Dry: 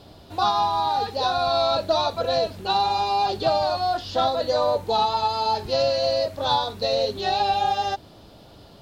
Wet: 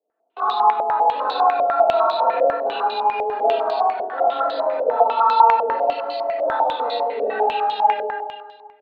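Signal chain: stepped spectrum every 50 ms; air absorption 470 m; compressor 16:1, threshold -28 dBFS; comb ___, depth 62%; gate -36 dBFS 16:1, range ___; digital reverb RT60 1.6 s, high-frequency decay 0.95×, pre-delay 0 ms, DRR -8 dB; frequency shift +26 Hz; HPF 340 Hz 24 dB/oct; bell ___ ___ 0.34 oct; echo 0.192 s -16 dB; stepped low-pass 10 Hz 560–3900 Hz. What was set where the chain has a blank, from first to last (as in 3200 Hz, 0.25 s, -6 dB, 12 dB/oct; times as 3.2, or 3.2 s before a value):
4.6 ms, -34 dB, 690 Hz, -3 dB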